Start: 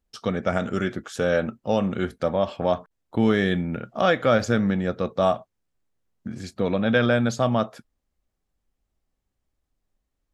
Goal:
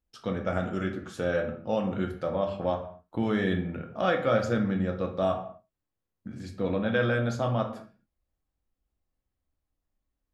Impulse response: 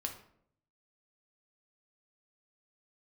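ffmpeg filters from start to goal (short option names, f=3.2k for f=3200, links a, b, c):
-filter_complex "[0:a]equalizer=f=6.3k:w=0.61:g=-4[a];[1:a]atrim=start_sample=2205,afade=t=out:st=0.31:d=0.01,atrim=end_sample=14112[b];[a][b]afir=irnorm=-1:irlink=0,volume=-5dB"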